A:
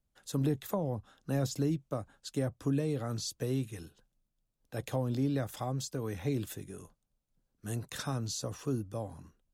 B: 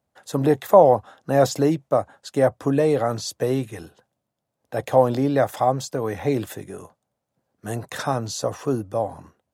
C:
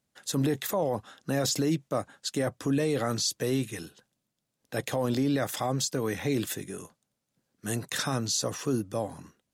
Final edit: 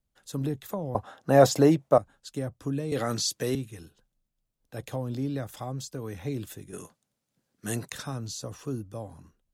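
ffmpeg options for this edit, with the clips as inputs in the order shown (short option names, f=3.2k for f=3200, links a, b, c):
-filter_complex "[2:a]asplit=2[a][b];[0:a]asplit=4[c][d][e][f];[c]atrim=end=0.952[g];[1:a]atrim=start=0.948:end=1.982[h];[d]atrim=start=1.978:end=2.922[i];[a]atrim=start=2.918:end=3.552[j];[e]atrim=start=3.548:end=6.732[k];[b]atrim=start=6.728:end=7.922[l];[f]atrim=start=7.918[m];[g][h]acrossfade=d=0.004:c1=hsin:c2=hsin[n];[n][i]acrossfade=d=0.004:c1=hsin:c2=hsin[o];[o][j]acrossfade=d=0.004:c1=hsin:c2=hsin[p];[p][k]acrossfade=d=0.004:c1=hsin:c2=hsin[q];[q][l]acrossfade=d=0.004:c1=hsin:c2=hsin[r];[r][m]acrossfade=d=0.004:c1=hsin:c2=hsin"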